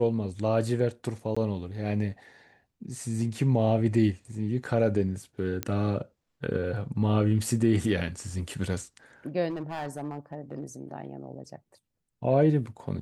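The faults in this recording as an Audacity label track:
1.350000	1.360000	dropout 15 ms
5.630000	5.630000	pop -12 dBFS
9.490000	10.640000	clipped -29 dBFS

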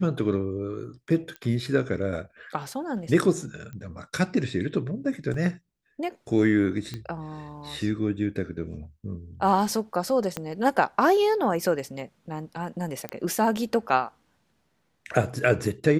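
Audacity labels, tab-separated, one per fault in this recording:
1.360000	1.360000	pop -23 dBFS
3.730000	3.730000	pop -28 dBFS
5.340000	5.340000	dropout 2.9 ms
6.940000	6.940000	pop -20 dBFS
10.370000	10.370000	pop -14 dBFS
13.090000	13.090000	pop -16 dBFS

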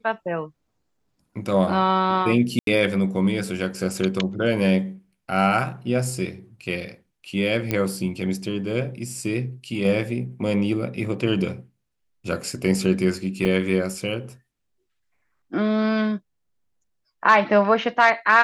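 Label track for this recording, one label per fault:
2.590000	2.670000	dropout 82 ms
7.710000	7.710000	pop -10 dBFS
13.450000	13.450000	dropout 3.4 ms

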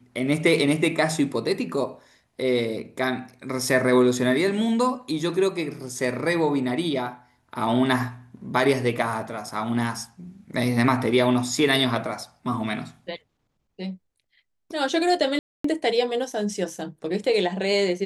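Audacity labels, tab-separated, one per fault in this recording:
15.390000	15.640000	dropout 254 ms

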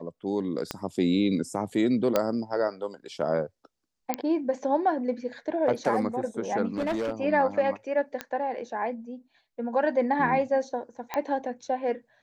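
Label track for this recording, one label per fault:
0.710000	0.710000	pop -14 dBFS
2.160000	2.160000	pop -9 dBFS
4.140000	4.140000	pop -11 dBFS
6.770000	7.120000	clipped -24.5 dBFS
8.210000	8.210000	pop -16 dBFS
11.140000	11.140000	pop -15 dBFS

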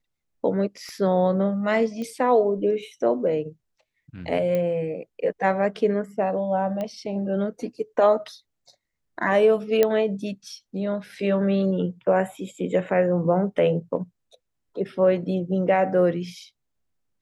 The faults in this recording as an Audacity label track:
0.890000	0.890000	pop -28 dBFS
2.020000	2.020000	pop -22 dBFS
4.550000	4.550000	pop -15 dBFS
6.810000	6.810000	pop -18 dBFS
9.830000	9.830000	pop -7 dBFS

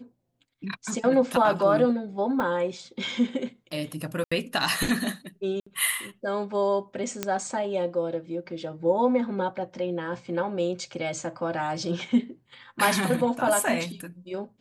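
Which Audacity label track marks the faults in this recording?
2.400000	2.400000	dropout 2.3 ms
4.240000	4.320000	dropout 75 ms
5.600000	5.670000	dropout 65 ms
7.230000	7.230000	pop -11 dBFS

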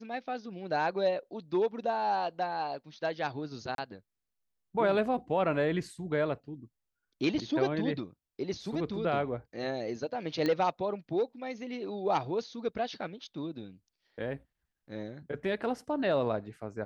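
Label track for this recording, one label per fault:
3.750000	3.780000	dropout 32 ms
10.460000	10.460000	pop -18 dBFS

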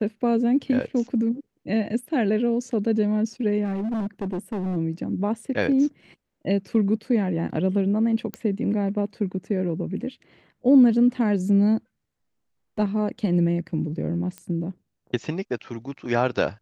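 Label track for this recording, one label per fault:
3.640000	4.770000	clipped -24 dBFS
8.340000	8.340000	pop -16 dBFS
14.380000	14.380000	pop -21 dBFS

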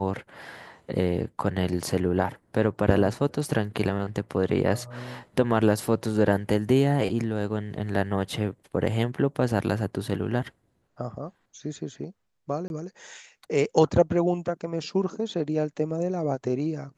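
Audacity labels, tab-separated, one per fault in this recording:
12.680000	12.700000	dropout 21 ms

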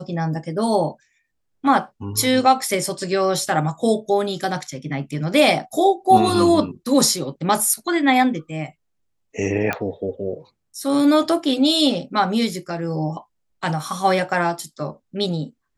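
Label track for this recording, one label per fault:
9.730000	9.730000	pop -9 dBFS

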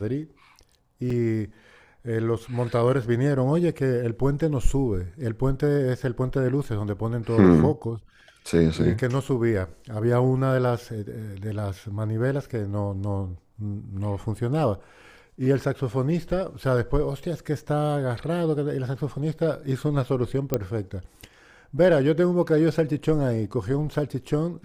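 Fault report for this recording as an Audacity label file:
1.100000	1.100000	dropout 4.1 ms
20.540000	20.540000	pop -9 dBFS

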